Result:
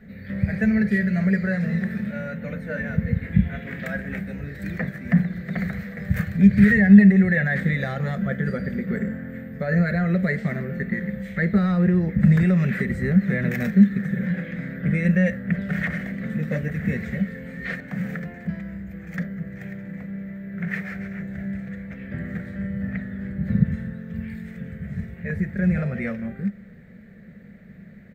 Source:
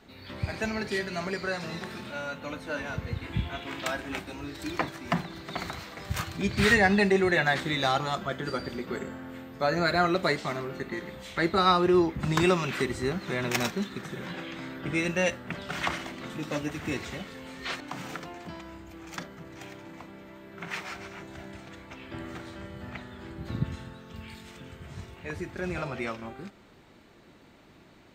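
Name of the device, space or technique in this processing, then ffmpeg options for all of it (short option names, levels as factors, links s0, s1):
soft clipper into limiter: -af "asoftclip=type=tanh:threshold=0.266,alimiter=limit=0.106:level=0:latency=1:release=89,firequalizer=gain_entry='entry(120,0);entry(200,12);entry(300,-18);entry(480,-1);entry(950,-24);entry(1800,2);entry(2800,-19);entry(5600,-22);entry(15000,-8)':delay=0.05:min_phase=1,volume=2.82"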